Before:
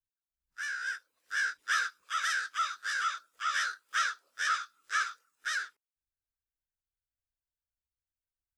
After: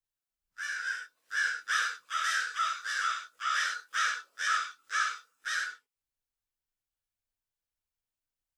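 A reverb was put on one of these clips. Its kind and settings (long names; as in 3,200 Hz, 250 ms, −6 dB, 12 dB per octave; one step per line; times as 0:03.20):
reverb whose tail is shaped and stops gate 120 ms flat, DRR 0 dB
level −1.5 dB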